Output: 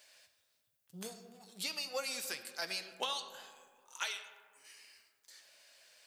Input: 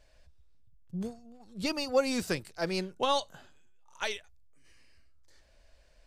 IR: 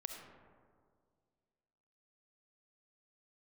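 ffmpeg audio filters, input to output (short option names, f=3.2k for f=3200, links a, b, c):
-filter_complex "[0:a]highpass=100,aderivative,acompressor=threshold=-51dB:ratio=6,flanger=delay=6.6:depth=5.1:regen=-64:speed=0.36:shape=triangular,asplit=2[a][b];[1:a]atrim=start_sample=2205,lowpass=4.5k[c];[b][c]afir=irnorm=-1:irlink=0,volume=2dB[d];[a][d]amix=inputs=2:normalize=0,volume=16.5dB"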